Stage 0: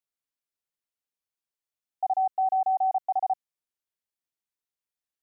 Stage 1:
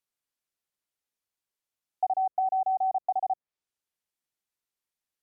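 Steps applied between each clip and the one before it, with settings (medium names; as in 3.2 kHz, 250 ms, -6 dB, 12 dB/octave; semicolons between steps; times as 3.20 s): low-pass that closes with the level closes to 650 Hz, closed at -24 dBFS; trim +2.5 dB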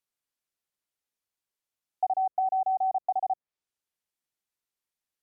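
no audible change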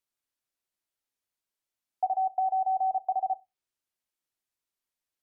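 reverberation RT60 0.20 s, pre-delay 3 ms, DRR 12 dB; trim -1 dB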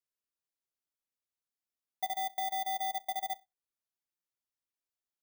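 bit-reversed sample order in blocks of 16 samples; trim -7.5 dB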